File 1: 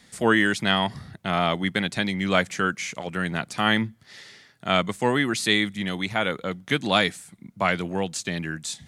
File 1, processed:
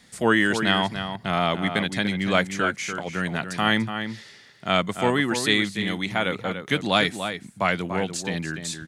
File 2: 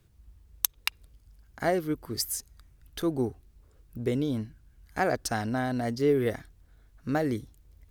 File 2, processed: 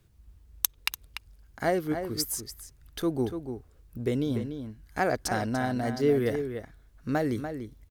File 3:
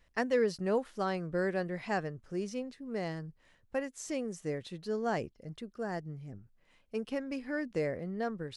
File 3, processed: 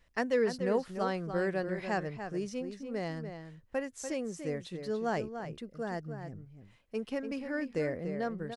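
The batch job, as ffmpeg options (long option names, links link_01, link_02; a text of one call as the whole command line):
ffmpeg -i in.wav -filter_complex "[0:a]asplit=2[link_01][link_02];[link_02]adelay=291.5,volume=-8dB,highshelf=frequency=4000:gain=-6.56[link_03];[link_01][link_03]amix=inputs=2:normalize=0" out.wav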